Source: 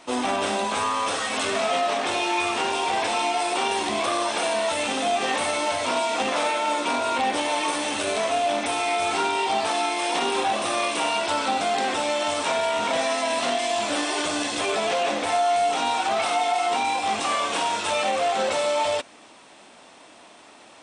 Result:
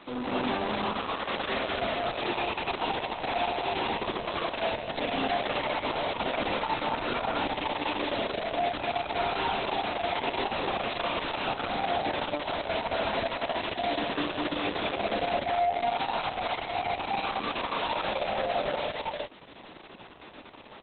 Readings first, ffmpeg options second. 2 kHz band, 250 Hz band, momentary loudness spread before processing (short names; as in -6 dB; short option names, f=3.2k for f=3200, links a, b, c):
-6.0 dB, -3.5 dB, 2 LU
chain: -af "acompressor=mode=upward:threshold=-36dB:ratio=2.5,highpass=f=48:p=1,aresample=11025,asoftclip=type=hard:threshold=-23.5dB,aresample=44100,lowshelf=f=350:g=8.5,aecho=1:1:195.3|262.4:0.794|1,adynamicequalizer=threshold=0.00158:dfrequency=100:dqfactor=5:tfrequency=100:tqfactor=5:attack=5:release=100:ratio=0.375:range=1.5:mode=cutabove:tftype=bell,volume=-8.5dB" -ar 48000 -c:a libopus -b:a 6k